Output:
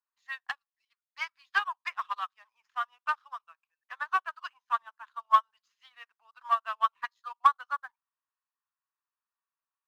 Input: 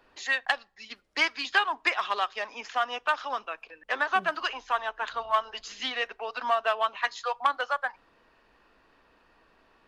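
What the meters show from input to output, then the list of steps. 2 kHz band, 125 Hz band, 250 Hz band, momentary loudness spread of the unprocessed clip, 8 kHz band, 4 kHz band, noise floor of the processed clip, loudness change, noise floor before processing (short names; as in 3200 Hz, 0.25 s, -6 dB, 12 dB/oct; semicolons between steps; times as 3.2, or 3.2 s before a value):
-7.5 dB, n/a, under -25 dB, 9 LU, under -10 dB, -12.0 dB, under -85 dBFS, -2.5 dB, -64 dBFS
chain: ladder high-pass 940 Hz, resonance 55%; sample leveller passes 1; upward expander 2.5:1, over -40 dBFS; gain +4.5 dB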